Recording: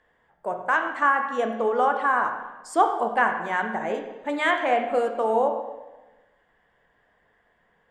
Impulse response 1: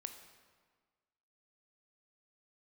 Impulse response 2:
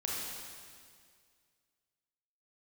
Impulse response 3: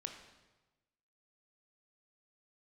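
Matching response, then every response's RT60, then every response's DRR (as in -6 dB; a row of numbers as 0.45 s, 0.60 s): 3; 1.5 s, 2.0 s, 1.2 s; 6.5 dB, -4.5 dB, 4.0 dB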